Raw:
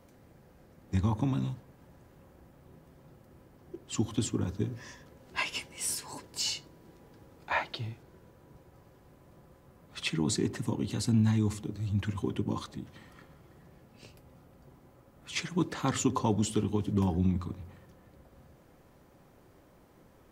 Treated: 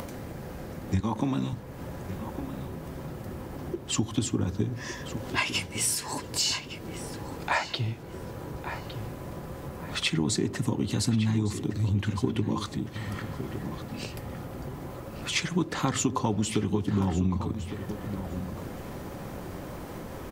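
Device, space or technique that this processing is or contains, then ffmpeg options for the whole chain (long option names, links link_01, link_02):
upward and downward compression: -filter_complex "[0:a]asettb=1/sr,asplit=3[link_01][link_02][link_03];[link_01]atrim=end=1.004[link_04];[link_02]atrim=start=1:end=1.53,asetpts=PTS-STARTPTS,afade=type=in:duration=0.004:curve=qsin,afade=type=out:start_time=0.526:duration=0.004:curve=qsin,highpass=200[link_05];[link_03]atrim=start=1.526[link_06];[link_04][link_05]acrossfade=duration=0.004:curve1=hsin:curve2=qsin[link_07];[link_07][link_06]acrossfade=duration=0.004:curve1=qsin:curve2=hsin,acompressor=mode=upward:threshold=-36dB:ratio=2.5,acompressor=threshold=-32dB:ratio=4,asplit=2[link_08][link_09];[link_09]adelay=1160,lowpass=frequency=3400:poles=1,volume=-10dB,asplit=2[link_10][link_11];[link_11]adelay=1160,lowpass=frequency=3400:poles=1,volume=0.31,asplit=2[link_12][link_13];[link_13]adelay=1160,lowpass=frequency=3400:poles=1,volume=0.31[link_14];[link_08][link_10][link_12][link_14]amix=inputs=4:normalize=0,volume=8.5dB"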